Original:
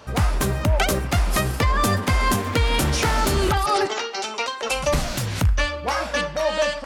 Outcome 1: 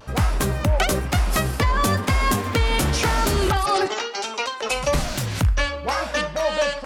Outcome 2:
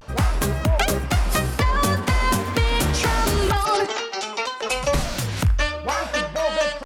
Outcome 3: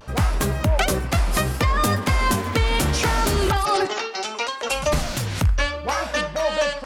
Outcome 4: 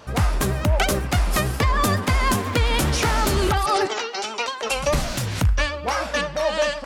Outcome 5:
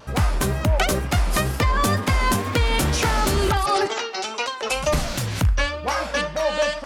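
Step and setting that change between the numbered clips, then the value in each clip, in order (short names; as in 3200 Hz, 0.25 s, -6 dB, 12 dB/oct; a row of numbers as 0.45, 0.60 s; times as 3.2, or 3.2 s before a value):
vibrato, rate: 1, 0.37, 0.69, 9.8, 2.1 Hz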